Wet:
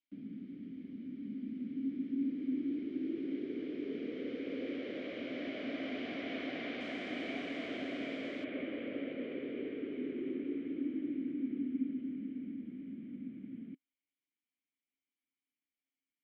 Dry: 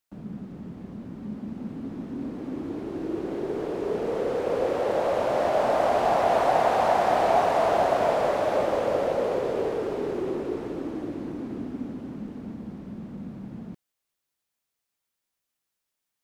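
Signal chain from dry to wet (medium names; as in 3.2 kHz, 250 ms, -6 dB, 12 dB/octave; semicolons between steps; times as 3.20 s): vowel filter i; dynamic bell 200 Hz, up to -3 dB, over -49 dBFS, Q 0.71; low-pass 5.7 kHz 24 dB/octave, from 6.81 s 9.3 kHz, from 8.44 s 3.1 kHz; trim +4.5 dB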